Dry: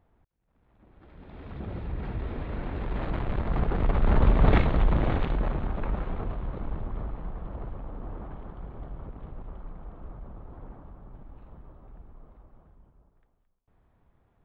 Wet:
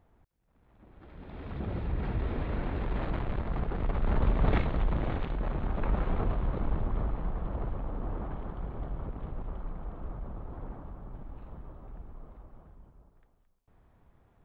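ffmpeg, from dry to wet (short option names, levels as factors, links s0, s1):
-af "volume=3.35,afade=t=out:st=2.47:d=1.15:silence=0.421697,afade=t=in:st=5.37:d=0.81:silence=0.354813"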